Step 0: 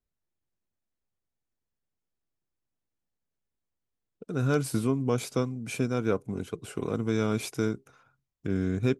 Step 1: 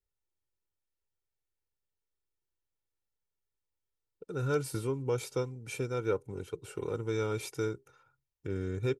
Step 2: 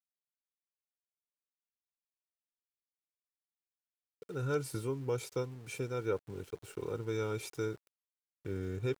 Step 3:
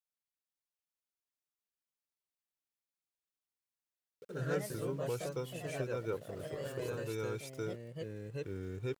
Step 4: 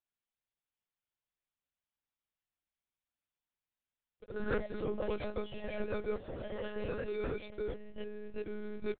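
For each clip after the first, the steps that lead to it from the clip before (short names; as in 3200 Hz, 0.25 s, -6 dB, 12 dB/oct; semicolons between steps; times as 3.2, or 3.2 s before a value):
comb 2.2 ms, depth 71%; gain -6.5 dB
sample gate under -50 dBFS; gain -3 dB
echoes that change speed 0.475 s, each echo +2 st, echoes 3; gain -4 dB
monotone LPC vocoder at 8 kHz 210 Hz; gain +1.5 dB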